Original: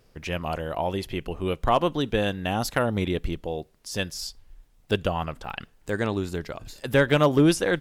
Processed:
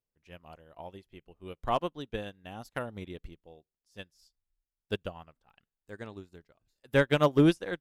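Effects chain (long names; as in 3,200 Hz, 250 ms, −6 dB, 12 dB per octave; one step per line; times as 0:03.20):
expander for the loud parts 2.5 to 1, over −37 dBFS
level −2 dB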